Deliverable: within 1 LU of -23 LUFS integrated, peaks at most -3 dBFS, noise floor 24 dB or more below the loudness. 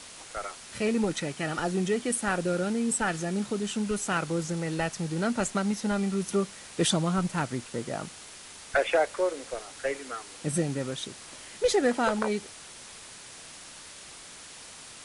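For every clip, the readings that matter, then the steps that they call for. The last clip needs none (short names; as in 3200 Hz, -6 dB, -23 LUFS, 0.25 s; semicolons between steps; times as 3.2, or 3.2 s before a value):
noise floor -47 dBFS; noise floor target -54 dBFS; loudness -29.5 LUFS; peak -14.5 dBFS; loudness target -23.0 LUFS
-> denoiser 7 dB, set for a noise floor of -47 dBFS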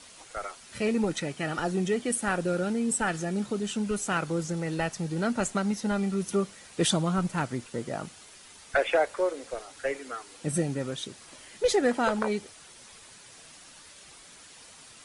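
noise floor -51 dBFS; noise floor target -54 dBFS
-> denoiser 6 dB, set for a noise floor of -51 dBFS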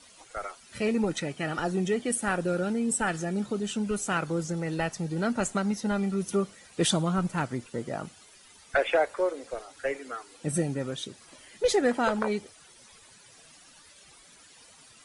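noise floor -55 dBFS; loudness -29.5 LUFS; peak -14.5 dBFS; loudness target -23.0 LUFS
-> gain +6.5 dB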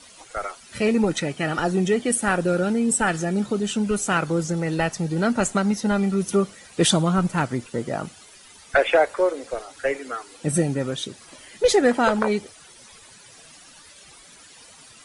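loudness -23.0 LUFS; peak -8.0 dBFS; noise floor -48 dBFS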